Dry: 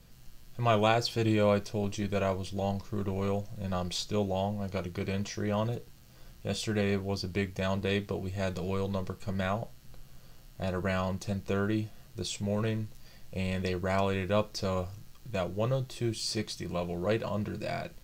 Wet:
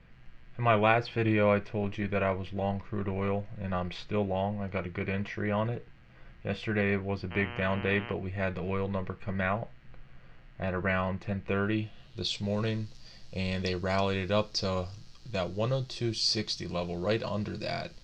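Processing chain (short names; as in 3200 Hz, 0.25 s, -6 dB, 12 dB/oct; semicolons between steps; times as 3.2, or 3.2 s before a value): low-pass sweep 2100 Hz -> 4900 Hz, 11.41–12.54; 7.3–8.12 buzz 120 Hz, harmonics 26, -42 dBFS -1 dB/oct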